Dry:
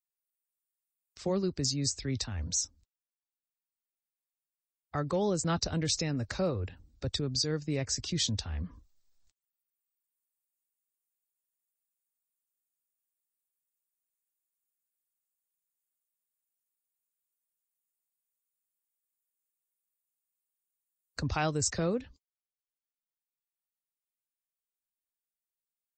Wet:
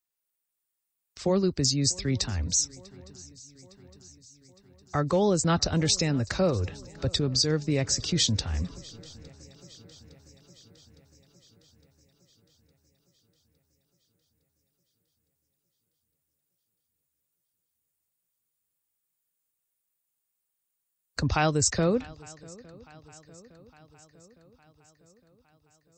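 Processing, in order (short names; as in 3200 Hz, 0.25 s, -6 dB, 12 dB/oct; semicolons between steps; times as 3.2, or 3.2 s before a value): swung echo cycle 0.86 s, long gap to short 3:1, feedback 58%, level -23.5 dB; gain +6 dB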